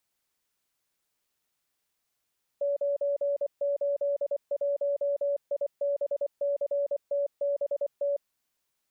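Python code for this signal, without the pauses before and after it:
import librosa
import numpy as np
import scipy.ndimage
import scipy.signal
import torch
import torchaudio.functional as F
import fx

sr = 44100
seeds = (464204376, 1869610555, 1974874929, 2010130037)

y = fx.morse(sr, text='981IBCTBT', wpm=24, hz=568.0, level_db=-24.5)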